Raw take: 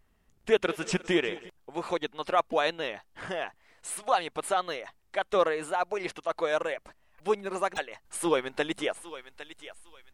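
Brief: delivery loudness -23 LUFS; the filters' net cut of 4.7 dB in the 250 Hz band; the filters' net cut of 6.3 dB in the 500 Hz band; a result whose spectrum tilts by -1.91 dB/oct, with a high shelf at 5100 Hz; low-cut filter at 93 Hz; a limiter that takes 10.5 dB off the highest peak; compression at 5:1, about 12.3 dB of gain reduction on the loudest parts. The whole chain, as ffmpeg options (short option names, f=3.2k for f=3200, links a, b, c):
-af "highpass=93,equalizer=f=250:t=o:g=-3.5,equalizer=f=500:t=o:g=-7,highshelf=f=5.1k:g=8,acompressor=threshold=-36dB:ratio=5,volume=20.5dB,alimiter=limit=-10.5dB:level=0:latency=1"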